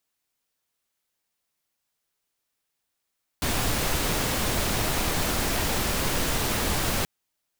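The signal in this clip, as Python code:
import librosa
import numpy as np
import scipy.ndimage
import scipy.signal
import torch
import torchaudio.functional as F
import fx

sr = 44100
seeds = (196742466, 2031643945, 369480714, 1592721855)

y = fx.noise_colour(sr, seeds[0], length_s=3.63, colour='pink', level_db=-25.5)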